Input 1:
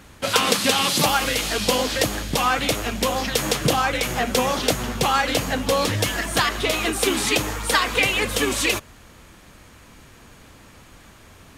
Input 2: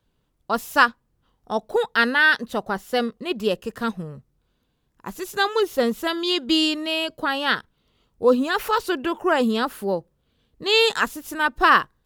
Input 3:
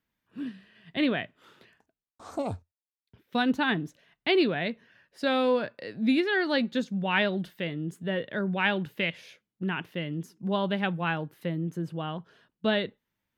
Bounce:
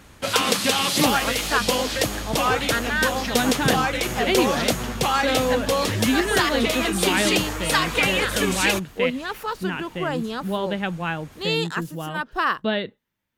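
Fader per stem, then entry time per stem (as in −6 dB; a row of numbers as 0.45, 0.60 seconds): −1.5, −7.0, +2.0 decibels; 0.00, 0.75, 0.00 seconds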